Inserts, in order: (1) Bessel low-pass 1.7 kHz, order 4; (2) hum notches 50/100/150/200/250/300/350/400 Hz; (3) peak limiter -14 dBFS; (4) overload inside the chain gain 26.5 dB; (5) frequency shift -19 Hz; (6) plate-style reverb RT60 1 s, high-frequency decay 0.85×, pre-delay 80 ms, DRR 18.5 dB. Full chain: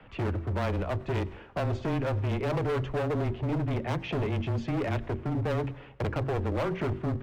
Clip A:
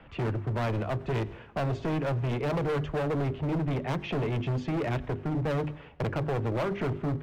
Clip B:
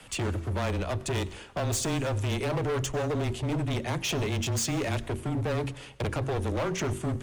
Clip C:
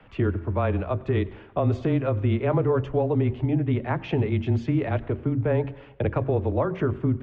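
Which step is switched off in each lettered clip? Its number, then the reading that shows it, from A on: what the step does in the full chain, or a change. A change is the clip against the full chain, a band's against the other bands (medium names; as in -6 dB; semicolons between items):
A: 5, crest factor change -7.0 dB; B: 1, 4 kHz band +9.0 dB; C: 4, distortion -6 dB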